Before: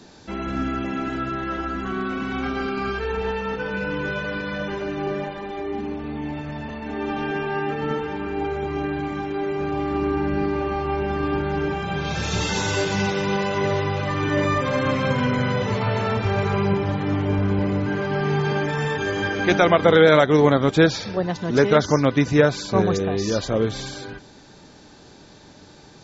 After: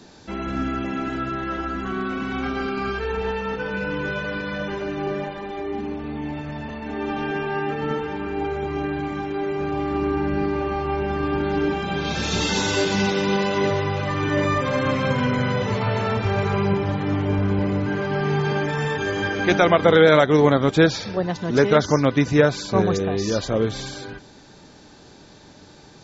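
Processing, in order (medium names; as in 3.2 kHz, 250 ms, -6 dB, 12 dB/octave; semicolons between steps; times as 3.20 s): 11.40–13.70 s: graphic EQ 125/250/4000 Hz -6/+7/+4 dB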